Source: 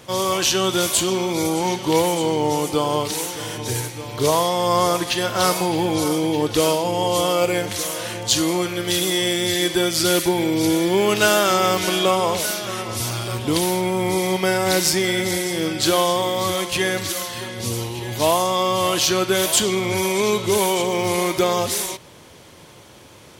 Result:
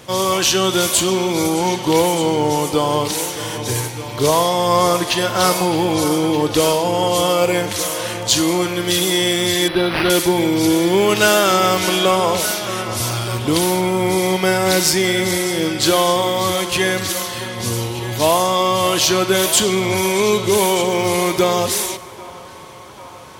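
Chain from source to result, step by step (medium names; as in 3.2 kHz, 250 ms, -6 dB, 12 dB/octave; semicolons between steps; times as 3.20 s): in parallel at -11.5 dB: hard clipper -16 dBFS, distortion -13 dB; on the sum: band-passed feedback delay 792 ms, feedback 81%, band-pass 1.1 kHz, level -18 dB; plate-style reverb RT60 2.6 s, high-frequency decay 0.55×, DRR 16.5 dB; 9.68–10.10 s: decimation joined by straight lines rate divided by 6×; trim +1.5 dB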